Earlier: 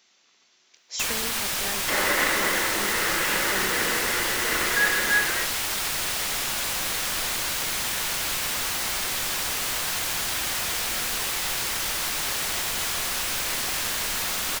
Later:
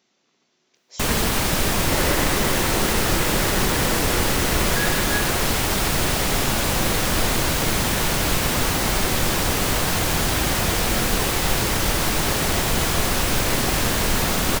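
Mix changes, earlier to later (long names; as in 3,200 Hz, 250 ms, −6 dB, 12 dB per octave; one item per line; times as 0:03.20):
first sound +11.0 dB
master: add tilt shelving filter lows +8.5 dB, about 690 Hz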